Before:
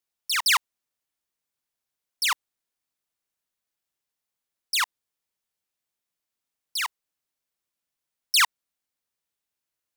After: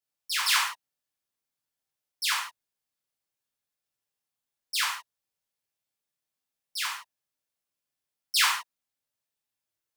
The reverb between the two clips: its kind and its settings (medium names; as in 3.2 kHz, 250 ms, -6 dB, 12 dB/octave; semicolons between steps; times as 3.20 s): gated-style reverb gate 190 ms falling, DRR -7.5 dB; trim -10.5 dB